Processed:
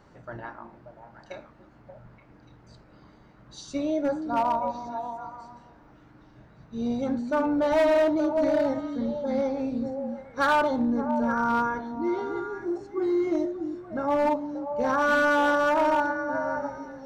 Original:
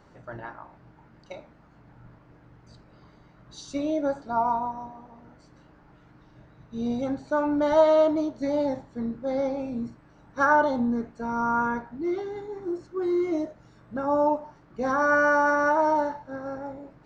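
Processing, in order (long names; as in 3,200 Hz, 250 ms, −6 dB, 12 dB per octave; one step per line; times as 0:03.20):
echo through a band-pass that steps 291 ms, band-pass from 240 Hz, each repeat 1.4 octaves, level −3.5 dB
gain into a clipping stage and back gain 18 dB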